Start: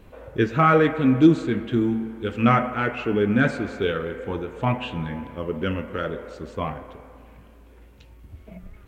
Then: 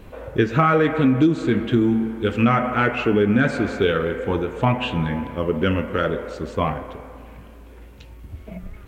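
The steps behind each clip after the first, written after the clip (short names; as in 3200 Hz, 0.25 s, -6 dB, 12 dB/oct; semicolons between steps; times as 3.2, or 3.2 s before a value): compressor 6:1, threshold -20 dBFS, peak gain reduction 10.5 dB; gain +6.5 dB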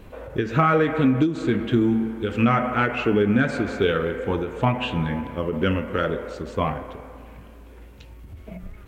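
ending taper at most 130 dB/s; gain -1.5 dB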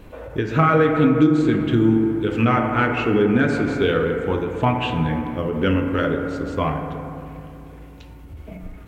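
FDN reverb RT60 2.7 s, low-frequency decay 1.3×, high-frequency decay 0.3×, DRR 6 dB; gain +1 dB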